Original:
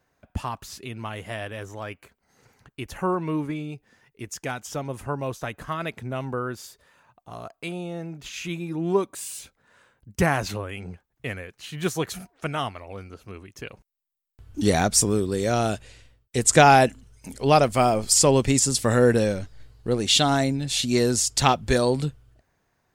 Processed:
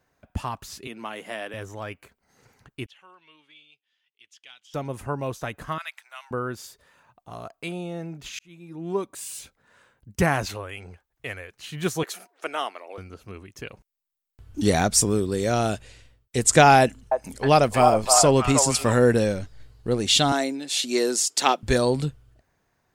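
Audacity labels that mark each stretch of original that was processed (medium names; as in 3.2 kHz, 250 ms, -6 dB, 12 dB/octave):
0.870000	1.540000	high-pass 210 Hz 24 dB/octave
2.860000	4.740000	band-pass filter 3.2 kHz, Q 5.8
5.780000	6.310000	Bessel high-pass 1.5 kHz, order 6
8.390000	9.380000	fade in linear
10.450000	11.520000	peaking EQ 180 Hz -11 dB 1.6 oct
12.030000	12.980000	high-pass 340 Hz 24 dB/octave
16.800000	18.980000	repeats whose band climbs or falls 313 ms, band-pass from 840 Hz, each repeat 0.7 oct, level 0 dB
20.320000	21.630000	Chebyshev high-pass 300 Hz, order 3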